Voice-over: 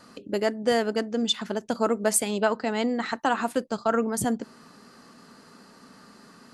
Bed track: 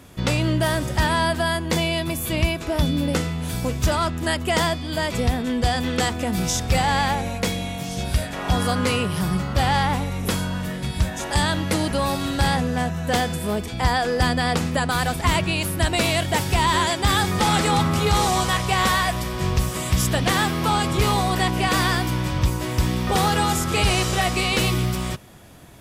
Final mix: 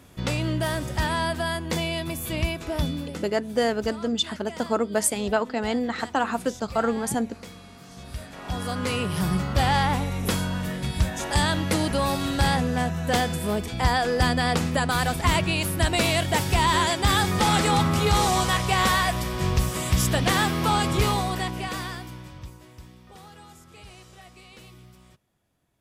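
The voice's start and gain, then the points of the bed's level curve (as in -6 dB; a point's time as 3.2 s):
2.90 s, 0.0 dB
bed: 2.85 s -5 dB
3.34 s -19 dB
7.73 s -19 dB
9.22 s -1.5 dB
20.97 s -1.5 dB
23.01 s -27 dB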